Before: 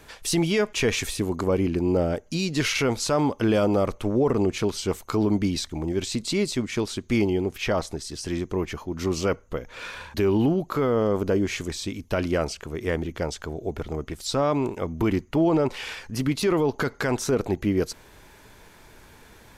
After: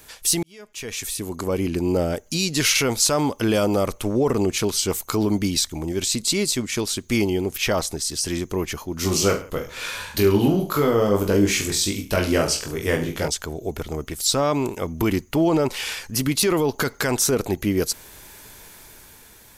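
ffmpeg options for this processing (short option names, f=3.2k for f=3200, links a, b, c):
-filter_complex "[0:a]asettb=1/sr,asplit=3[a][b][c];[a]atrim=end=9.014[d];[b]atrim=start=9.01:end=13.28,asetpts=PTS-STARTPTS,afade=t=in:d=0.004:c=qsin,afade=t=out:st=4.266:d=0.004:c=qsin,aecho=1:1:20|43|69.45|99.87|134.8|175.1:0.631|0.398|0.251|0.158|0.1|0.0631,atrim=end_sample=188307[e];[c]atrim=start=13.276[f];[d][e]acrossfade=d=0.004:c1=hsin:c2=qsin[g];[g][f]acrossfade=d=0.004:c1=qsin:c2=hsin,asplit=2[h][i];[h]atrim=end=0.43,asetpts=PTS-STARTPTS,afade=t=out:st=0.426:d=0.004:c=hsin[j];[i]atrim=start=0.43,asetpts=PTS-STARTPTS,afade=t=in:d=1.39[k];[j][k]concat=n=2:v=0:a=1,aemphasis=mode=production:type=75kf,dynaudnorm=f=160:g=11:m=5dB,volume=-3dB"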